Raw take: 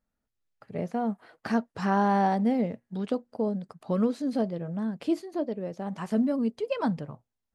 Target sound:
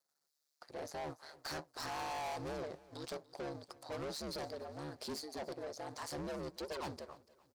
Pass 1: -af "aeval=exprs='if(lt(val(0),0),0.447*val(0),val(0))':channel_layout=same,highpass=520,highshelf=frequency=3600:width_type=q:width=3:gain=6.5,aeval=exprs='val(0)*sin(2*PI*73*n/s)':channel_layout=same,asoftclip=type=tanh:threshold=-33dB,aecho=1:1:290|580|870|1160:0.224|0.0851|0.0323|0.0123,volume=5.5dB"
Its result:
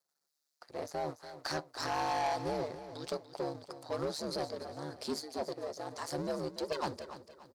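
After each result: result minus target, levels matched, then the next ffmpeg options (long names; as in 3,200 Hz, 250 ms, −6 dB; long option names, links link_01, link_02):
echo-to-direct +8 dB; soft clipping: distortion −7 dB
-af "aeval=exprs='if(lt(val(0),0),0.447*val(0),val(0))':channel_layout=same,highpass=520,highshelf=frequency=3600:width_type=q:width=3:gain=6.5,aeval=exprs='val(0)*sin(2*PI*73*n/s)':channel_layout=same,asoftclip=type=tanh:threshold=-33dB,aecho=1:1:290|580|870:0.0891|0.0339|0.0129,volume=5.5dB"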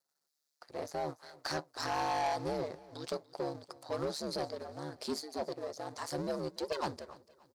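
soft clipping: distortion −7 dB
-af "aeval=exprs='if(lt(val(0),0),0.447*val(0),val(0))':channel_layout=same,highpass=520,highshelf=frequency=3600:width_type=q:width=3:gain=6.5,aeval=exprs='val(0)*sin(2*PI*73*n/s)':channel_layout=same,asoftclip=type=tanh:threshold=-44dB,aecho=1:1:290|580|870:0.0891|0.0339|0.0129,volume=5.5dB"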